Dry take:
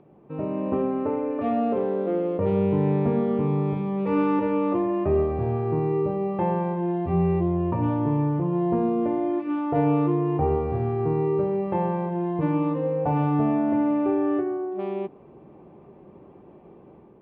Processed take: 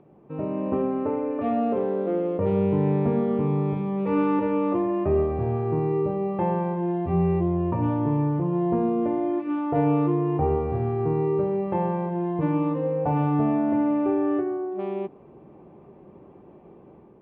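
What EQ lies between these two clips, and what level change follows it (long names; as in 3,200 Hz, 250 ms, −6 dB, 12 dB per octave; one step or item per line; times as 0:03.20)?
high-frequency loss of the air 84 metres
0.0 dB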